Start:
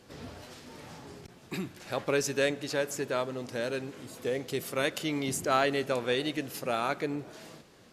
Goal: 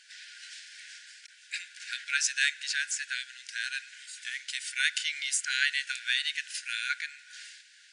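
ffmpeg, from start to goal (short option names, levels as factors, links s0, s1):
-af "afftfilt=real='re*between(b*sr/4096,1400,10000)':imag='im*between(b*sr/4096,1400,10000)':win_size=4096:overlap=0.75,volume=2.11"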